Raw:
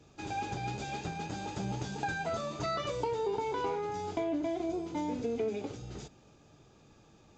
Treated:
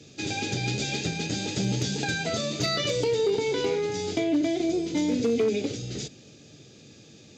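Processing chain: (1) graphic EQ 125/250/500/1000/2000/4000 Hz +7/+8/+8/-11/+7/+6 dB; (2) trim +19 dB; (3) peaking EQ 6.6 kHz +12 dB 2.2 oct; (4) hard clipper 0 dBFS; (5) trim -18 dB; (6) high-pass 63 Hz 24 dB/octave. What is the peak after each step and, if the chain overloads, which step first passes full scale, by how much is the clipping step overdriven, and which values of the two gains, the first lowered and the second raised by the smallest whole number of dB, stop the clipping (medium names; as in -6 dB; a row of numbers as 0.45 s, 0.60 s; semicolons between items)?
-15.5 dBFS, +3.5 dBFS, +4.0 dBFS, 0.0 dBFS, -18.0 dBFS, -13.5 dBFS; step 2, 4.0 dB; step 2 +15 dB, step 5 -14 dB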